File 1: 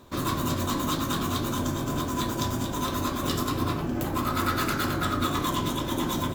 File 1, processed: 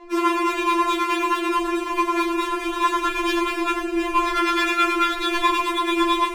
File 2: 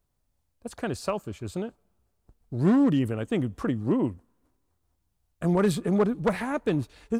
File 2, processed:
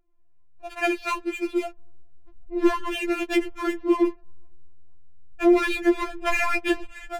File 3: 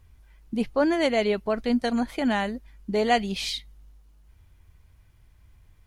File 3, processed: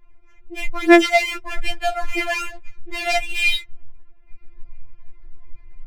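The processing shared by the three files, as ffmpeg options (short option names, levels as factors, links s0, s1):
-filter_complex "[0:a]lowpass=f=2500:t=q:w=3.8,asplit=2[s0][s1];[s1]alimiter=limit=0.158:level=0:latency=1:release=318,volume=0.841[s2];[s0][s2]amix=inputs=2:normalize=0,asubboost=boost=10.5:cutoff=57,aeval=exprs='0.668*sin(PI/2*2.51*val(0)/0.668)':c=same,adynamicsmooth=sensitivity=5.5:basefreq=780,afftfilt=real='re*4*eq(mod(b,16),0)':imag='im*4*eq(mod(b,16),0)':win_size=2048:overlap=0.75,volume=0.422"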